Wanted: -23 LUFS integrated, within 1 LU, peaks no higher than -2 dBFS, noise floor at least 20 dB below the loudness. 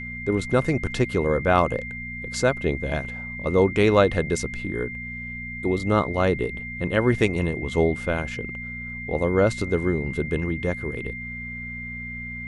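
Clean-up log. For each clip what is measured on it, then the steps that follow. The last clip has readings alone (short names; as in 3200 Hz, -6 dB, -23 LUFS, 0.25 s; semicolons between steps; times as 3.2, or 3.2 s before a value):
hum 60 Hz; harmonics up to 240 Hz; hum level -36 dBFS; steady tone 2100 Hz; tone level -33 dBFS; loudness -24.5 LUFS; peak -4.5 dBFS; loudness target -23.0 LUFS
-> de-hum 60 Hz, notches 4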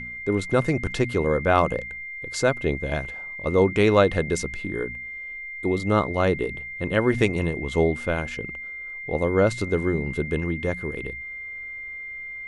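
hum none; steady tone 2100 Hz; tone level -33 dBFS
-> notch 2100 Hz, Q 30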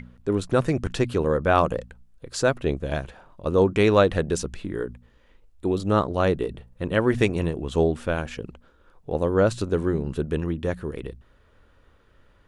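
steady tone none; loudness -24.5 LUFS; peak -4.5 dBFS; loudness target -23.0 LUFS
-> gain +1.5 dB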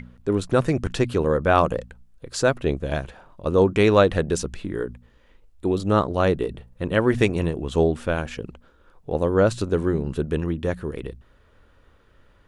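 loudness -23.0 LUFS; peak -3.0 dBFS; noise floor -57 dBFS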